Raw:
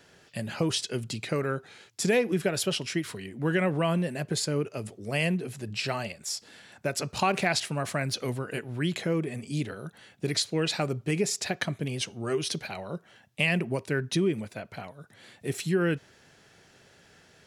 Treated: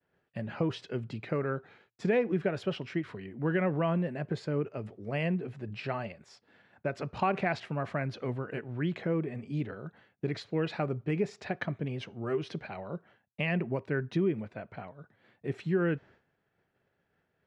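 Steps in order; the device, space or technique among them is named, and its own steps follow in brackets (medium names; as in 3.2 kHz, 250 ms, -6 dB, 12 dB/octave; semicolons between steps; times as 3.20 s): hearing-loss simulation (low-pass 1.9 kHz 12 dB/octave; expander -49 dBFS); trim -2.5 dB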